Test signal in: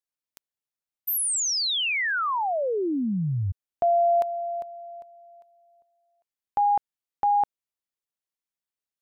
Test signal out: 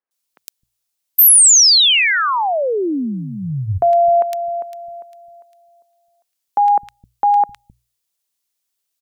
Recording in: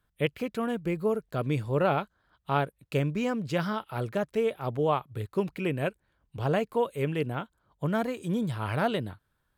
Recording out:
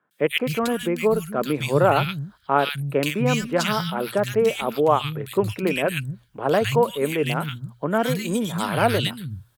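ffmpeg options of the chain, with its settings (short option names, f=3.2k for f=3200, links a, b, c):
-filter_complex "[0:a]highshelf=f=2.4k:g=10.5,bandreject=f=60:t=h:w=6,bandreject=f=120:t=h:w=6,acrossover=split=180|1800[a][b][c];[c]adelay=110[d];[a]adelay=260[e];[e][b][d]amix=inputs=3:normalize=0,volume=7.5dB"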